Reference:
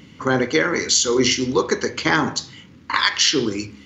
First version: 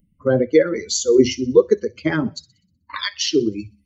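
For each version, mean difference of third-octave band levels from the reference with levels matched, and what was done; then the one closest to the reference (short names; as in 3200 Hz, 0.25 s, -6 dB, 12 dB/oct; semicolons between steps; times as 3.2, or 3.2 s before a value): 12.5 dB: per-bin expansion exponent 2; resonant low shelf 680 Hz +7.5 dB, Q 3; on a send: thin delay 62 ms, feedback 46%, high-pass 3700 Hz, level -19 dB; on the sum: gain -2.5 dB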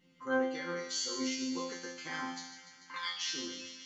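7.5 dB: low shelf 100 Hz -6 dB; resonator bank F3 fifth, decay 0.71 s; thin delay 0.147 s, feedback 74%, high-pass 1900 Hz, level -10 dB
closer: second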